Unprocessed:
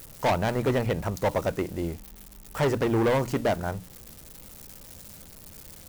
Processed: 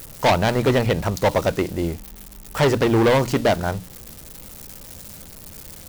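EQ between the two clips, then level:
dynamic equaliser 4,000 Hz, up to +5 dB, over −48 dBFS, Q 1
+6.5 dB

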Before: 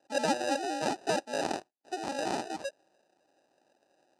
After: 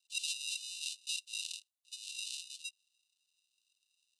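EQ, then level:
Chebyshev high-pass with heavy ripple 2,700 Hz, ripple 6 dB
+4.5 dB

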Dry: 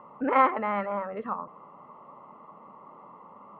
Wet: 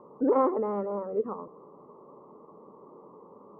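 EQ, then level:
drawn EQ curve 230 Hz 0 dB, 420 Hz +11 dB, 650 Hz −5 dB, 1,100 Hz −7 dB, 2,200 Hz −26 dB, 4,500 Hz −20 dB
0.0 dB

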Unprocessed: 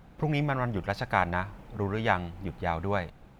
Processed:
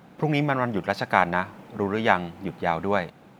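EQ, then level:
Chebyshev high-pass filter 200 Hz, order 2
+6.5 dB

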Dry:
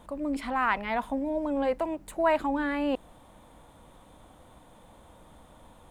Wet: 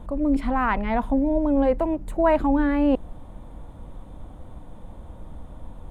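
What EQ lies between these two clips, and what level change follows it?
spectral tilt −3.5 dB per octave
high-shelf EQ 8,200 Hz +7 dB
+3.0 dB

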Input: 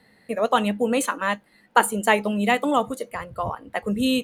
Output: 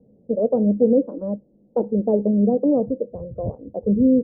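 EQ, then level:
elliptic low-pass filter 550 Hz, stop band 80 dB
+6.5 dB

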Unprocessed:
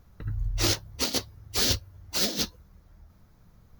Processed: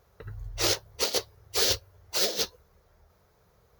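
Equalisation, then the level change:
high-pass filter 42 Hz
low shelf with overshoot 340 Hz −7.5 dB, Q 3
0.0 dB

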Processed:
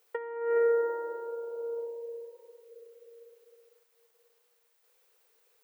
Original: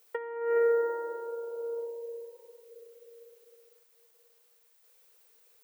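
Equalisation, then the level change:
high-shelf EQ 3,800 Hz −6.5 dB
0.0 dB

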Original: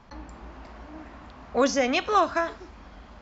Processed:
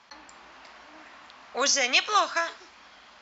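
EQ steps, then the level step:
dynamic equaliser 6,700 Hz, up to +4 dB, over −41 dBFS, Q 0.78
resonant band-pass 4,500 Hz, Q 0.56
+6.5 dB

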